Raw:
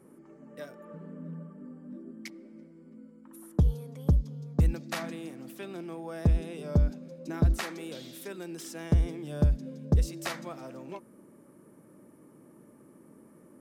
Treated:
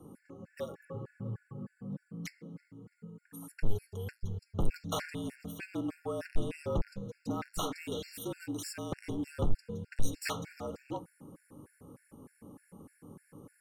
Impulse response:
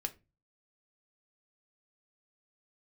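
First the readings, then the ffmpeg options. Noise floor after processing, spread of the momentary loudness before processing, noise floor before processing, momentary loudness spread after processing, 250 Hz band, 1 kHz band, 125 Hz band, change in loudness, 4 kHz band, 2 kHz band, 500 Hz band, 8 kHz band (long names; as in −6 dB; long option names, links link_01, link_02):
−74 dBFS, 17 LU, −56 dBFS, 18 LU, −4.5 dB, +0.5 dB, −11.0 dB, −8.5 dB, 0.0 dB, −3.0 dB, −1.0 dB, +1.0 dB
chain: -filter_complex "[0:a]asoftclip=type=tanh:threshold=-31.5dB,afreqshift=-51,aeval=exprs='0.0562*(cos(1*acos(clip(val(0)/0.0562,-1,1)))-cos(1*PI/2))+0.00112*(cos(7*acos(clip(val(0)/0.0562,-1,1)))-cos(7*PI/2))':channel_layout=same,asplit=2[link_01][link_02];[1:a]atrim=start_sample=2205[link_03];[link_02][link_03]afir=irnorm=-1:irlink=0,volume=0.5dB[link_04];[link_01][link_04]amix=inputs=2:normalize=0,afftfilt=real='re*gt(sin(2*PI*3.3*pts/sr)*(1-2*mod(floor(b*sr/1024/1400),2)),0)':imag='im*gt(sin(2*PI*3.3*pts/sr)*(1-2*mod(floor(b*sr/1024/1400),2)),0)':win_size=1024:overlap=0.75"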